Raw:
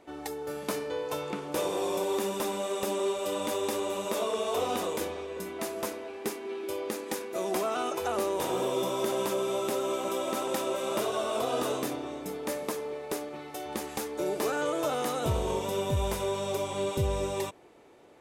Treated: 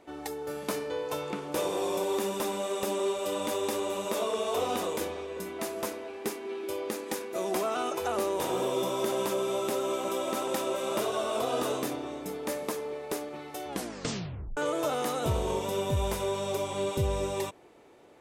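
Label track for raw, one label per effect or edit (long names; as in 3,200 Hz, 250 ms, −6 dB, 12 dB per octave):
13.680000	13.680000	tape stop 0.89 s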